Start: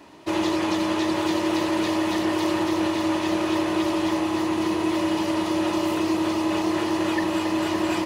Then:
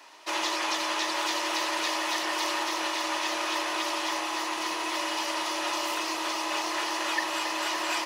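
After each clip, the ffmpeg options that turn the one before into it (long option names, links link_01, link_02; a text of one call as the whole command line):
ffmpeg -i in.wav -af "highpass=910,equalizer=frequency=5600:width=2.4:gain=4.5,volume=1.5dB" out.wav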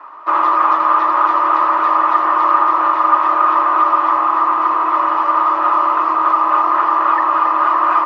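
ffmpeg -i in.wav -af "lowpass=frequency=1200:width_type=q:width=11,volume=7dB" out.wav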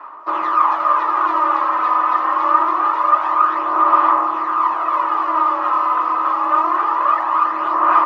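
ffmpeg -i in.wav -af "aphaser=in_gain=1:out_gain=1:delay=4:decay=0.45:speed=0.25:type=sinusoidal,volume=-4dB" out.wav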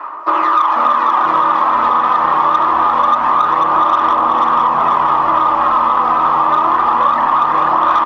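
ffmpeg -i in.wav -filter_complex "[0:a]acontrast=34,asplit=2[link_01][link_02];[link_02]asplit=7[link_03][link_04][link_05][link_06][link_07][link_08][link_09];[link_03]adelay=488,afreqshift=-85,volume=-4dB[link_10];[link_04]adelay=976,afreqshift=-170,volume=-9.5dB[link_11];[link_05]adelay=1464,afreqshift=-255,volume=-15dB[link_12];[link_06]adelay=1952,afreqshift=-340,volume=-20.5dB[link_13];[link_07]adelay=2440,afreqshift=-425,volume=-26.1dB[link_14];[link_08]adelay=2928,afreqshift=-510,volume=-31.6dB[link_15];[link_09]adelay=3416,afreqshift=-595,volume=-37.1dB[link_16];[link_10][link_11][link_12][link_13][link_14][link_15][link_16]amix=inputs=7:normalize=0[link_17];[link_01][link_17]amix=inputs=2:normalize=0,acompressor=threshold=-13dB:ratio=6,volume=3.5dB" out.wav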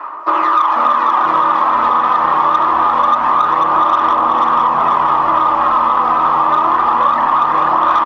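ffmpeg -i in.wav -af "aresample=32000,aresample=44100" out.wav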